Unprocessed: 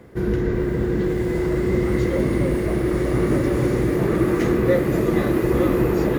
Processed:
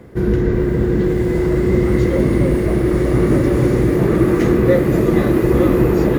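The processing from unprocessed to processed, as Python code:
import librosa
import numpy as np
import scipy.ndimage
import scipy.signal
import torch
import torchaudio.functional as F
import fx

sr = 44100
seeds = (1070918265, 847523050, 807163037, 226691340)

y = fx.low_shelf(x, sr, hz=450.0, db=4.0)
y = F.gain(torch.from_numpy(y), 2.5).numpy()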